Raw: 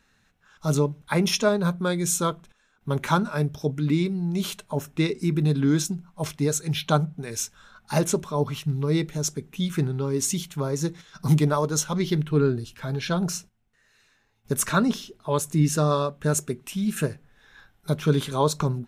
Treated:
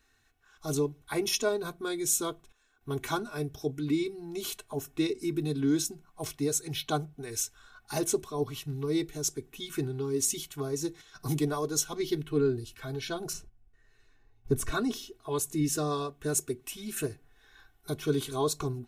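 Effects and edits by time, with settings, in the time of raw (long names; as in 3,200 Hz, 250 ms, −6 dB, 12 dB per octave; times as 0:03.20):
0:13.33–0:14.72: spectral tilt −3 dB per octave
whole clip: high-shelf EQ 10,000 Hz +8 dB; comb filter 2.7 ms, depth 98%; dynamic equaliser 1,300 Hz, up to −5 dB, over −36 dBFS, Q 0.75; level −7.5 dB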